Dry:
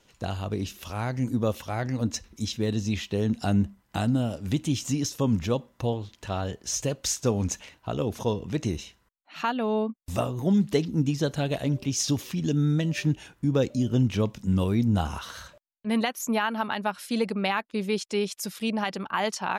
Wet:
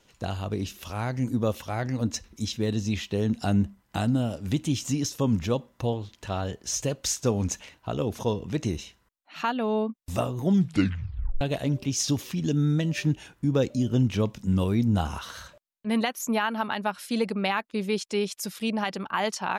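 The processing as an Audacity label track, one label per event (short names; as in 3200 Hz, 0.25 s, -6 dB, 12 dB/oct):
10.530000	10.530000	tape stop 0.88 s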